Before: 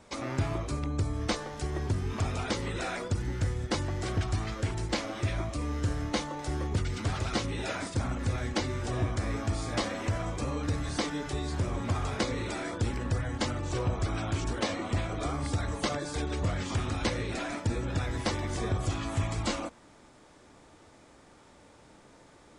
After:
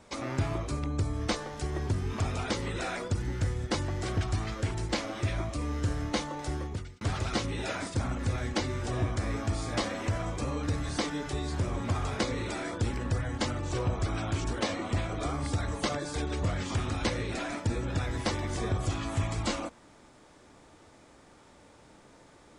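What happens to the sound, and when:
6.47–7.01 s: fade out

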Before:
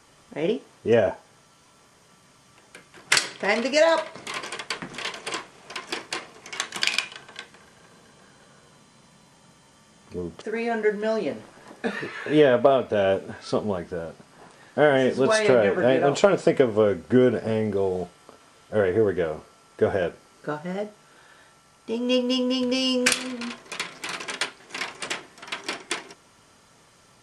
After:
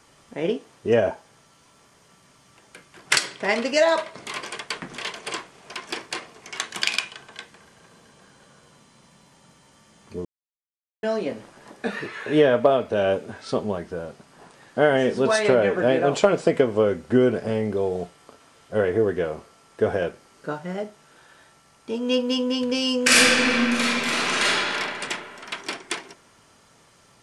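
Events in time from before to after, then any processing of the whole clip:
10.25–11.03 s: mute
23.03–24.44 s: reverb throw, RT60 2.7 s, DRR -10.5 dB

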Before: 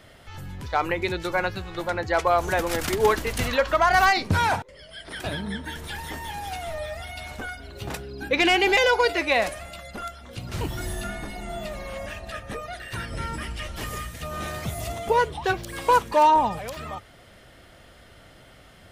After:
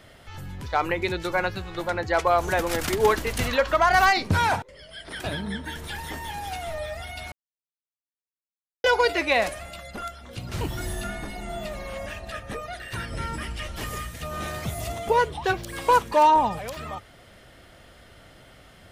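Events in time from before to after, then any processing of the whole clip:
7.32–8.84 s: mute

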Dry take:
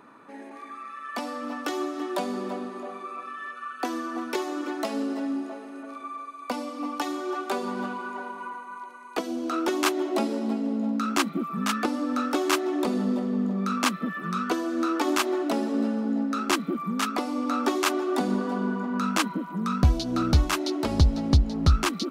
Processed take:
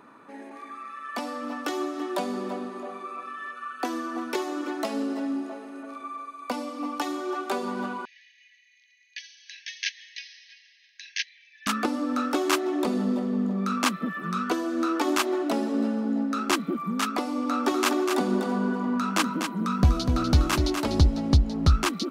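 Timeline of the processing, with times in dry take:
8.05–11.67 s: brick-wall FIR band-pass 1.6–6.5 kHz
17.47–21.07 s: delay 246 ms -6.5 dB

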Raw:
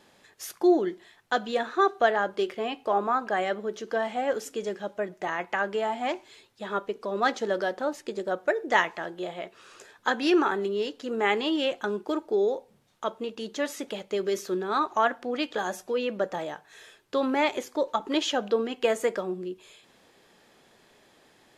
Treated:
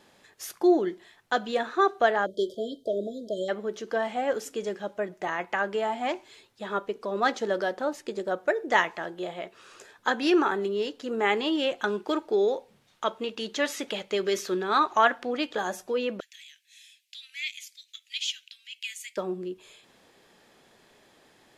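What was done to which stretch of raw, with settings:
2.26–3.49 s: spectral selection erased 670–3100 Hz
11.79–15.33 s: peaking EQ 2.8 kHz +6.5 dB 2.6 oct
16.20–19.17 s: steep high-pass 2.2 kHz 48 dB/octave

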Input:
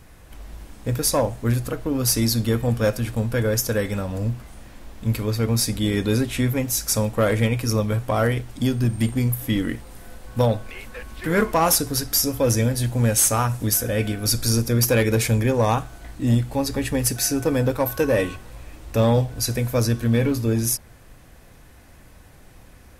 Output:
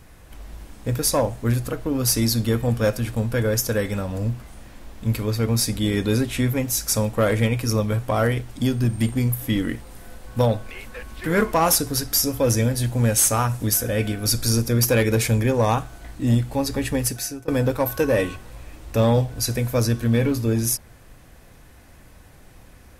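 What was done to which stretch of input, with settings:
16.95–17.48 s: fade out, to -23 dB

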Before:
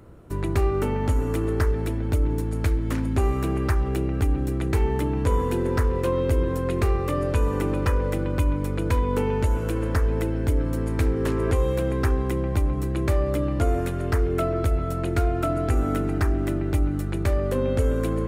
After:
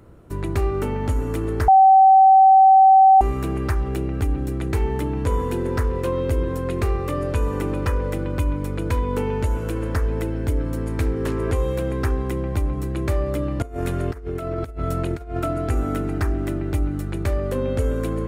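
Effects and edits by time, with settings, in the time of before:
1.68–3.21 s: bleep 768 Hz -8 dBFS
13.62–15.40 s: compressor with a negative ratio -26 dBFS, ratio -0.5

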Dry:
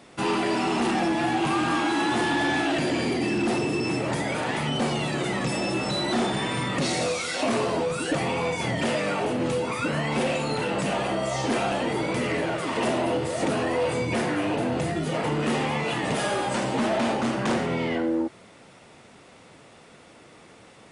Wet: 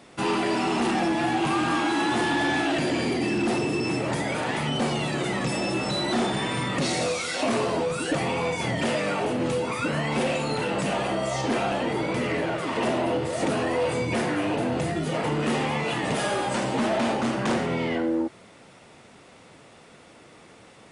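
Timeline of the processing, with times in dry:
11.41–13.33 s: treble shelf 6.3 kHz -6 dB

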